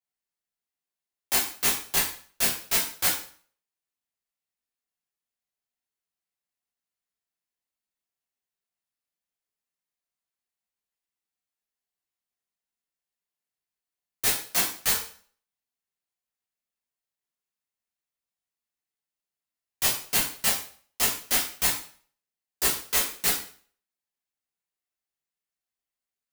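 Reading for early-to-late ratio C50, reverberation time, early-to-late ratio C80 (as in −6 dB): 6.5 dB, 0.50 s, 10.5 dB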